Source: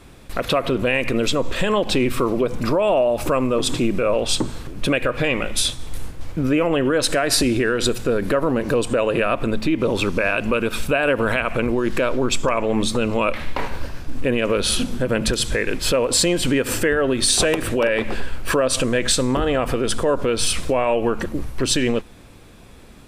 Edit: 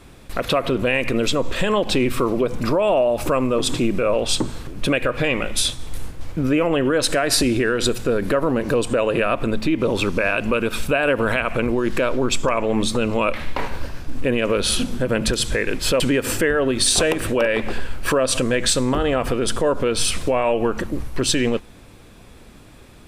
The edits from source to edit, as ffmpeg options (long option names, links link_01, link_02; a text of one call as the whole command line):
ffmpeg -i in.wav -filter_complex "[0:a]asplit=2[link_01][link_02];[link_01]atrim=end=16.002[link_03];[link_02]atrim=start=16.418[link_04];[link_03][link_04]acrossfade=duration=0.004:curve1=hsin:curve2=hsin" out.wav